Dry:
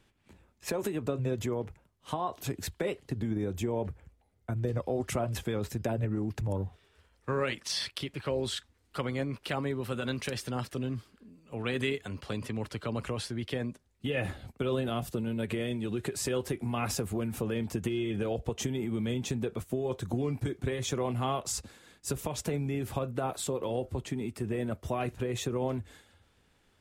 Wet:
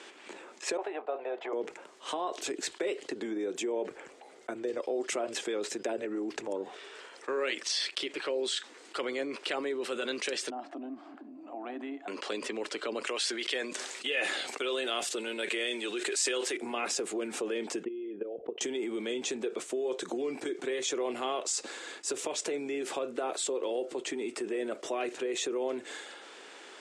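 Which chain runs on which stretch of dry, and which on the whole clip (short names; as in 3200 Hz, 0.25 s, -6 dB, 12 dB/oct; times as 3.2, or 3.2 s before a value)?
0.77–1.53 gate -37 dBFS, range -8 dB + resonant high-pass 750 Hz, resonance Q 6.5 + air absorption 440 m
10.5–12.08 double band-pass 450 Hz, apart 1.3 oct + upward compressor, threshold -50 dBFS
13.07–16.57 tilt shelf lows -7 dB, about 750 Hz + sustainer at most 55 dB/s
17.83–18.61 formant sharpening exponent 1.5 + level quantiser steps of 15 dB + air absorption 450 m
whole clip: elliptic band-pass 350–8100 Hz, stop band 50 dB; dynamic EQ 990 Hz, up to -6 dB, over -49 dBFS, Q 0.99; fast leveller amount 50%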